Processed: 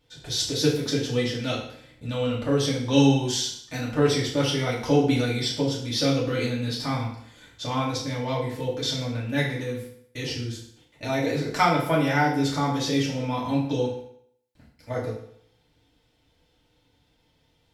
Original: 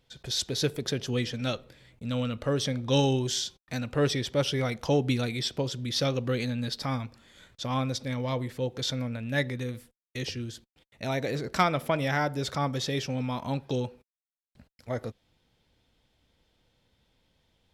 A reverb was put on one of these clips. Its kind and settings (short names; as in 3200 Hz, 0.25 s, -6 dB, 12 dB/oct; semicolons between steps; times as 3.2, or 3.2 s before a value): FDN reverb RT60 0.65 s, low-frequency decay 0.9×, high-frequency decay 0.9×, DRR -5.5 dB; gain -2.5 dB